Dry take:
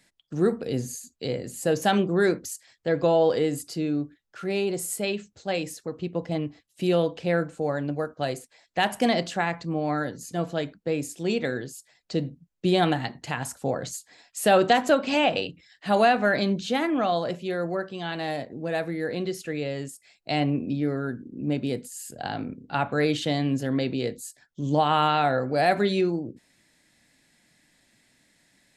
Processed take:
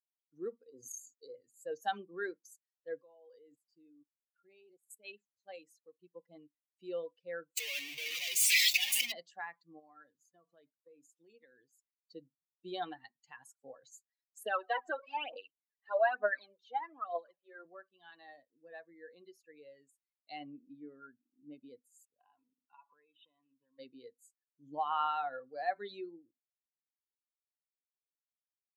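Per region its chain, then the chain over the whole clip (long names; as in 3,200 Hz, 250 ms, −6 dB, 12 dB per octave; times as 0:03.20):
0:00.70–0:01.35: transient designer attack +6 dB, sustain −12 dB + phaser with its sweep stopped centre 690 Hz, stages 6 + level that may fall only so fast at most 30 dB per second
0:03.02–0:05.05: notch filter 4,200 Hz, Q 20 + output level in coarse steps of 16 dB
0:07.57–0:09.12: sign of each sample alone + high shelf with overshoot 1,800 Hz +9.5 dB, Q 3
0:09.79–0:11.73: high-shelf EQ 5,100 Hz −3.5 dB + downward compressor 16 to 1, threshold −27 dBFS
0:14.43–0:17.65: high-pass filter 310 Hz + high-shelf EQ 3,600 Hz −11 dB + phase shifter 1.1 Hz, delay 2.8 ms, feedback 63%
0:22.05–0:23.79: Chebyshev low-pass filter 3,900 Hz, order 10 + downward compressor 12 to 1, threshold −35 dBFS + hollow resonant body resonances 1,000/2,600 Hz, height 13 dB, ringing for 25 ms
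whole clip: spectral dynamics exaggerated over time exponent 2; high-pass filter 660 Hz 12 dB per octave; level −6 dB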